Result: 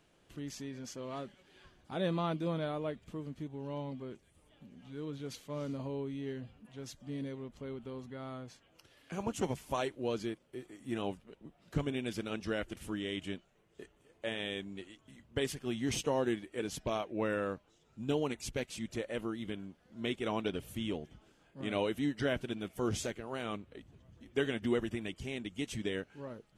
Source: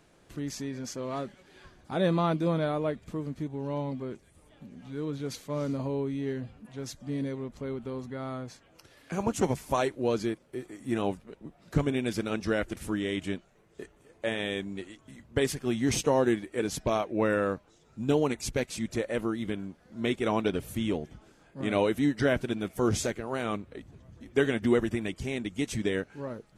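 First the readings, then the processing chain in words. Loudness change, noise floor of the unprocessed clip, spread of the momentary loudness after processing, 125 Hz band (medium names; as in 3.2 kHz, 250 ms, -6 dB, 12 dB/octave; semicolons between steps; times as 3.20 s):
-7.5 dB, -62 dBFS, 15 LU, -7.5 dB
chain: peaking EQ 3 kHz +6.5 dB 0.41 oct; trim -7.5 dB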